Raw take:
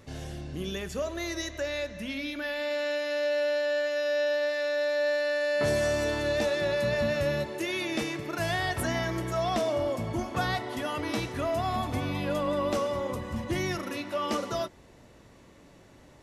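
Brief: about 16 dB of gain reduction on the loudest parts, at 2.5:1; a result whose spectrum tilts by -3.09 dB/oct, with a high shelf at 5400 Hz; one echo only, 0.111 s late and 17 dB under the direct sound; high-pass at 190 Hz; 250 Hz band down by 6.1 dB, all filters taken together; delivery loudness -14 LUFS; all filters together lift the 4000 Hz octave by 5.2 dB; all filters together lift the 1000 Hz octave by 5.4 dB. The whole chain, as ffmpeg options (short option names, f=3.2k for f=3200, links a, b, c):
-af "highpass=190,equalizer=f=250:t=o:g=-7.5,equalizer=f=1k:t=o:g=7.5,equalizer=f=4k:t=o:g=8,highshelf=f=5.4k:g=-5.5,acompressor=threshold=-48dB:ratio=2.5,aecho=1:1:111:0.141,volume=28.5dB"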